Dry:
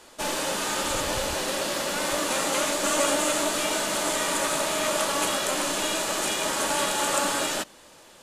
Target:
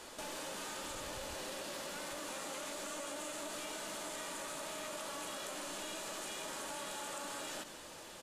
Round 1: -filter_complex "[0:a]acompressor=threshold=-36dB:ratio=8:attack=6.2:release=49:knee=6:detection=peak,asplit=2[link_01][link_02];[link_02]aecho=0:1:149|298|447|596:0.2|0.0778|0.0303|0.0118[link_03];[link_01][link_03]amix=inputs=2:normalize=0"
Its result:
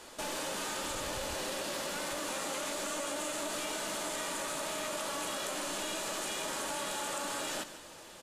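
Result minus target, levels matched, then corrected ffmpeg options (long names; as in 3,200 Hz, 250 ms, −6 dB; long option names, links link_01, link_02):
downward compressor: peak gain reduction −6.5 dB
-filter_complex "[0:a]acompressor=threshold=-43.5dB:ratio=8:attack=6.2:release=49:knee=6:detection=peak,asplit=2[link_01][link_02];[link_02]aecho=0:1:149|298|447|596:0.2|0.0778|0.0303|0.0118[link_03];[link_01][link_03]amix=inputs=2:normalize=0"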